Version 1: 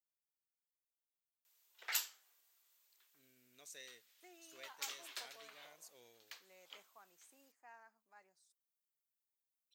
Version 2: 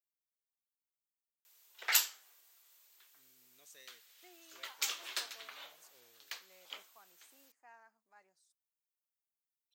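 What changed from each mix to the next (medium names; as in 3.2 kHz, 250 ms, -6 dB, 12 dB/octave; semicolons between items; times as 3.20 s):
first voice -4.5 dB; background +9.0 dB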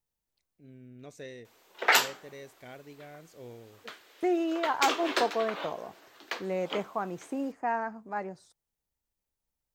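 first voice: entry -2.55 s; second voice +12.0 dB; master: remove differentiator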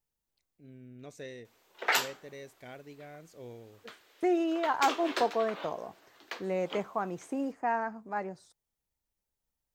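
background -5.0 dB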